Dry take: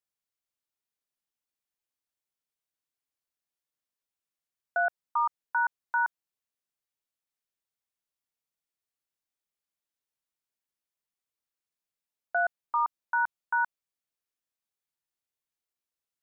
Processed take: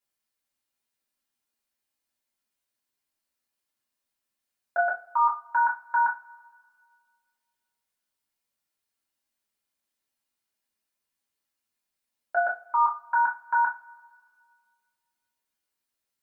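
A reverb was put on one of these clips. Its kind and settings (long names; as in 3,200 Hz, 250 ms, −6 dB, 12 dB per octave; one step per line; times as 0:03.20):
coupled-rooms reverb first 0.25 s, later 1.9 s, from −28 dB, DRR −5.5 dB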